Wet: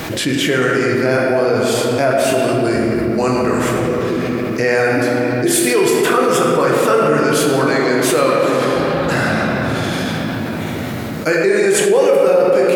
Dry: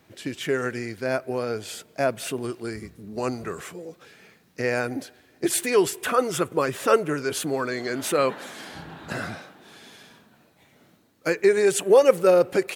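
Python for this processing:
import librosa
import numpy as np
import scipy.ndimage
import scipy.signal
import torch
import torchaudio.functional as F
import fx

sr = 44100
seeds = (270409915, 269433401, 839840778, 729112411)

y = fx.room_shoebox(x, sr, seeds[0], volume_m3=120.0, walls='hard', distance_m=0.56)
y = fx.env_flatten(y, sr, amount_pct=70)
y = y * librosa.db_to_amplitude(-2.0)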